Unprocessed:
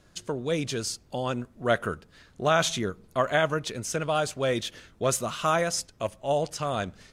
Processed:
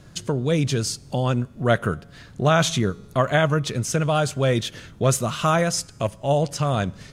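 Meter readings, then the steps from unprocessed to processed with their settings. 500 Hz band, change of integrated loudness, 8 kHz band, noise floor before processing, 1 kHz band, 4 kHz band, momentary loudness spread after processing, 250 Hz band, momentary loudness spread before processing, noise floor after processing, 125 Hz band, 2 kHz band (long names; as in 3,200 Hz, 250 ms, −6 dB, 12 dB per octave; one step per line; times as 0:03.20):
+4.0 dB, +5.5 dB, +4.0 dB, −59 dBFS, +3.5 dB, +4.0 dB, 7 LU, +8.0 dB, 8 LU, −47 dBFS, +12.5 dB, +3.5 dB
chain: parametric band 130 Hz +9.5 dB 1.4 octaves
in parallel at −0.5 dB: downward compressor, threshold −36 dBFS, peak gain reduction 18 dB
on the sum: tuned comb filter 140 Hz, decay 1.3 s, mix 30%
level +5 dB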